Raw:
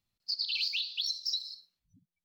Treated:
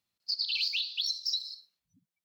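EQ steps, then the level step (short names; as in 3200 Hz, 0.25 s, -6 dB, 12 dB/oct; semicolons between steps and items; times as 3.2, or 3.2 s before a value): HPF 290 Hz 6 dB/oct; +1.5 dB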